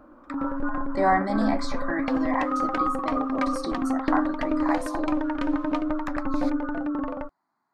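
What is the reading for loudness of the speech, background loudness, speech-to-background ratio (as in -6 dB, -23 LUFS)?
-30.0 LUFS, -28.0 LUFS, -2.0 dB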